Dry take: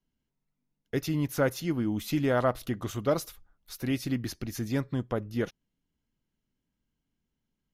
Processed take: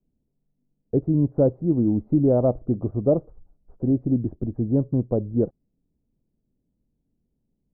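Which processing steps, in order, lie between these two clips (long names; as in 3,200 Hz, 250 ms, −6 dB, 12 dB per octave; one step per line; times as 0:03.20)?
inverse Chebyshev low-pass filter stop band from 2,800 Hz, stop band 70 dB
level +8.5 dB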